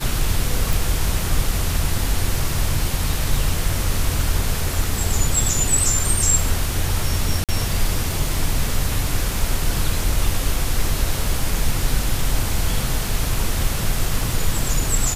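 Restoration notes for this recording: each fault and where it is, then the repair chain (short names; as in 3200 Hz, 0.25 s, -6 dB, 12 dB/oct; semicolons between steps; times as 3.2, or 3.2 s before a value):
crackle 28/s -26 dBFS
0.73 pop
7.44–7.49 gap 47 ms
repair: de-click; interpolate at 7.44, 47 ms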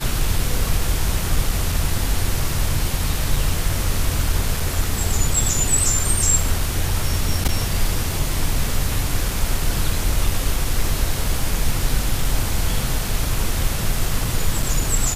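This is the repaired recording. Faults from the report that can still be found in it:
none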